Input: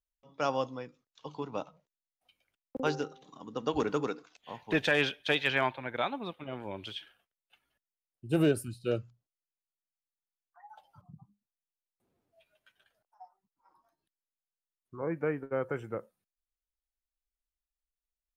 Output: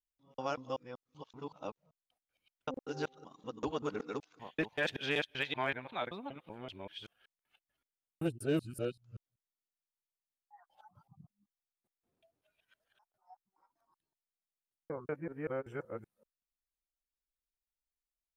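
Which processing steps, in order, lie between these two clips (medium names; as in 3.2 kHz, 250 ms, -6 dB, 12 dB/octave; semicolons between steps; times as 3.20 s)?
time reversed locally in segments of 191 ms; trim -6 dB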